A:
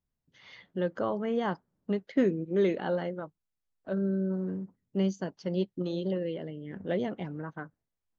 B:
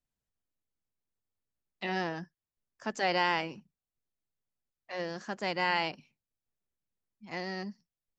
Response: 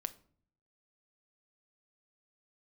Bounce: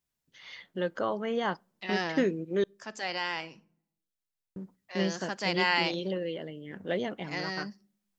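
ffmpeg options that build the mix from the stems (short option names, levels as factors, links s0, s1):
-filter_complex "[0:a]lowshelf=f=160:g=-7.5,volume=1.33,asplit=3[s0][s1][s2];[s0]atrim=end=2.64,asetpts=PTS-STARTPTS,afade=t=out:st=2.636:d=0.004:c=hsin[s3];[s1]atrim=start=2.64:end=4.56,asetpts=PTS-STARTPTS,volume=0[s4];[s2]atrim=start=4.56,asetpts=PTS-STARTPTS,afade=t=in:d=0.004:c=hsin[s5];[s3][s4][s5]concat=n=3:v=0:a=1,asplit=3[s6][s7][s8];[s7]volume=0.133[s9];[1:a]volume=1,asplit=2[s10][s11];[s11]volume=0.447[s12];[s8]apad=whole_len=361002[s13];[s10][s13]sidechaingate=range=0.224:threshold=0.00316:ratio=16:detection=peak[s14];[2:a]atrim=start_sample=2205[s15];[s9][s12]amix=inputs=2:normalize=0[s16];[s16][s15]afir=irnorm=-1:irlink=0[s17];[s6][s14][s17]amix=inputs=3:normalize=0,tiltshelf=f=1400:g=-4"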